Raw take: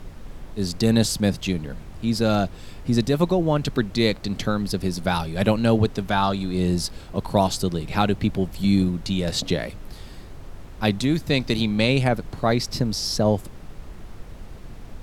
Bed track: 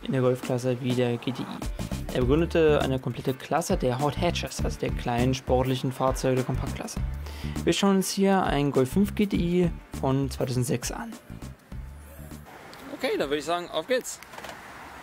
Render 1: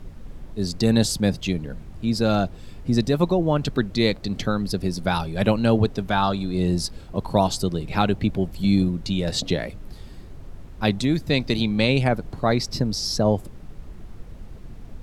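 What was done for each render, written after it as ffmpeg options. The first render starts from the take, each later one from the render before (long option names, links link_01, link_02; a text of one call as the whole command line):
ffmpeg -i in.wav -af "afftdn=noise_reduction=6:noise_floor=-41" out.wav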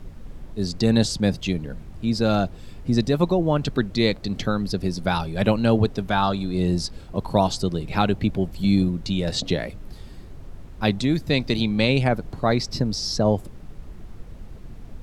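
ffmpeg -i in.wav -filter_complex "[0:a]acrossover=split=8100[link_01][link_02];[link_02]acompressor=threshold=-51dB:ratio=4:attack=1:release=60[link_03];[link_01][link_03]amix=inputs=2:normalize=0" out.wav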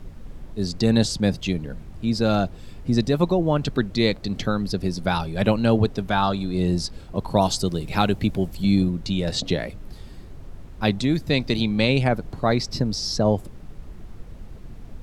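ffmpeg -i in.wav -filter_complex "[0:a]asettb=1/sr,asplit=3[link_01][link_02][link_03];[link_01]atrim=end=7.414[link_04];[link_02]atrim=start=7.41:end=8.57,asetpts=PTS-STARTPTS,afade=type=in:duration=0.004:curve=qsin,afade=type=out:start_time=1.156:duration=0.004:curve=qsin,highshelf=frequency=5800:gain=9[link_05];[link_03]atrim=start=8.566[link_06];[link_04][link_05]acrossfade=duration=0.004:curve1=hsin:curve2=qsin[link_07];[link_07][link_06]acrossfade=duration=0.004:curve1=qsin:curve2=hsin" out.wav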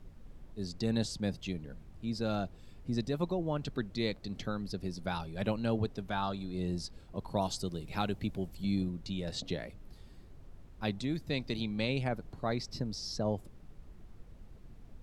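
ffmpeg -i in.wav -af "volume=-13dB" out.wav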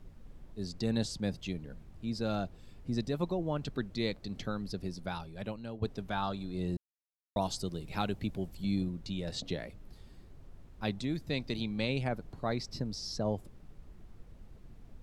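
ffmpeg -i in.wav -filter_complex "[0:a]asplit=4[link_01][link_02][link_03][link_04];[link_01]atrim=end=5.82,asetpts=PTS-STARTPTS,afade=type=out:start_time=4.8:duration=1.02:silence=0.199526[link_05];[link_02]atrim=start=5.82:end=6.77,asetpts=PTS-STARTPTS,afade=type=in:duration=0.004:curve=hsin:silence=0.199526,afade=type=out:start_time=0.946:duration=0.004:curve=hsin[link_06];[link_03]atrim=start=6.77:end=7.36,asetpts=PTS-STARTPTS,volume=0[link_07];[link_04]atrim=start=7.36,asetpts=PTS-STARTPTS,afade=type=in:duration=0.004:curve=hsin[link_08];[link_05][link_06][link_07][link_08]concat=n=4:v=0:a=1" out.wav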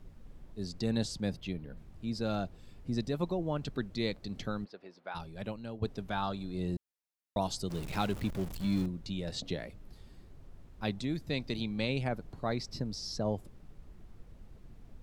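ffmpeg -i in.wav -filter_complex "[0:a]asettb=1/sr,asplit=3[link_01][link_02][link_03];[link_01]atrim=end=1.364[link_04];[link_02]atrim=start=1.36:end=1.77,asetpts=PTS-STARTPTS,afade=type=in:duration=0.004:curve=qsin,afade=type=out:start_time=0.406:duration=0.004:curve=qsin,equalizer=frequency=7100:width=1.2:gain=-9[link_05];[link_03]atrim=start=1.766[link_06];[link_04][link_05]acrossfade=duration=0.004:curve1=hsin:curve2=qsin[link_07];[link_07][link_06]acrossfade=duration=0.004:curve1=qsin:curve2=hsin,asplit=3[link_08][link_09][link_10];[link_08]afade=type=out:start_time=4.64:duration=0.02[link_11];[link_09]highpass=590,lowpass=2300,afade=type=in:start_time=4.64:duration=0.02,afade=type=out:start_time=5.14:duration=0.02[link_12];[link_10]afade=type=in:start_time=5.14:duration=0.02[link_13];[link_11][link_12][link_13]amix=inputs=3:normalize=0,asettb=1/sr,asplit=3[link_14][link_15][link_16];[link_14]atrim=end=7.704[link_17];[link_15]atrim=start=7.7:end=8.86,asetpts=PTS-STARTPTS,afade=type=in:duration=0.004:curve=qsin,afade=type=out:start_time=1.156:duration=0.004:curve=qsin,aeval=exprs='val(0)+0.5*0.0106*sgn(val(0))':channel_layout=same[link_18];[link_16]atrim=start=8.856[link_19];[link_17][link_18]acrossfade=duration=0.004:curve1=hsin:curve2=qsin[link_20];[link_20][link_19]acrossfade=duration=0.004:curve1=qsin:curve2=hsin" out.wav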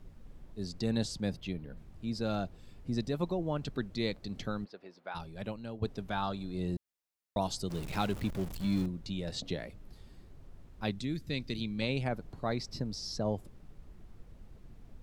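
ffmpeg -i in.wav -filter_complex "[0:a]asettb=1/sr,asplit=3[link_01][link_02][link_03];[link_01]atrim=end=10.914[link_04];[link_02]atrim=start=10.91:end=11.82,asetpts=PTS-STARTPTS,afade=type=in:duration=0.004:curve=qsin,afade=type=out:start_time=0.906:duration=0.004:curve=qsin,equalizer=frequency=780:width=1.2:gain=-10[link_05];[link_03]atrim=start=11.816[link_06];[link_04][link_05]acrossfade=duration=0.004:curve1=hsin:curve2=qsin[link_07];[link_07][link_06]acrossfade=duration=0.004:curve1=qsin:curve2=hsin" out.wav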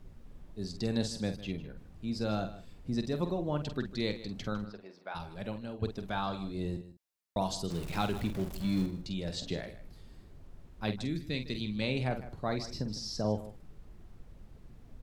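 ffmpeg -i in.wav -filter_complex "[0:a]asplit=2[link_01][link_02];[link_02]adelay=47,volume=-9dB[link_03];[link_01][link_03]amix=inputs=2:normalize=0,aecho=1:1:154:0.168" out.wav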